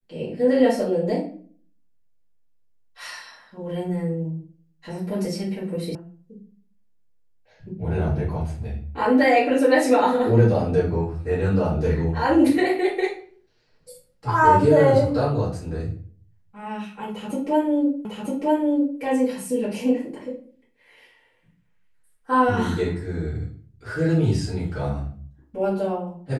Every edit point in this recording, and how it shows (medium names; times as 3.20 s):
5.95 s: sound stops dead
18.05 s: repeat of the last 0.95 s